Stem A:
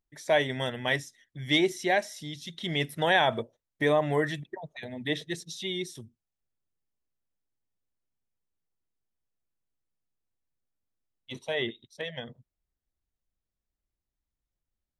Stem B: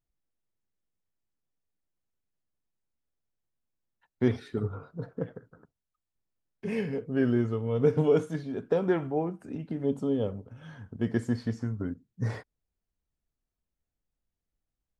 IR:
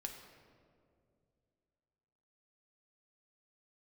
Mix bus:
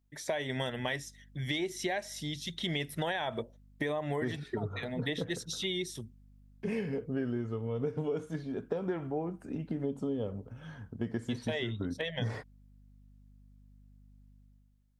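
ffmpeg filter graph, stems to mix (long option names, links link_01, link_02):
-filter_complex "[0:a]alimiter=limit=-19.5dB:level=0:latency=1:release=198,volume=2dB[link_01];[1:a]aeval=exprs='val(0)+0.00112*(sin(2*PI*50*n/s)+sin(2*PI*2*50*n/s)/2+sin(2*PI*3*50*n/s)/3+sin(2*PI*4*50*n/s)/4+sin(2*PI*5*50*n/s)/5)':channel_layout=same,dynaudnorm=framelen=120:gausssize=9:maxgain=16dB,volume=-13.5dB[link_02];[link_01][link_02]amix=inputs=2:normalize=0,acompressor=threshold=-30dB:ratio=6"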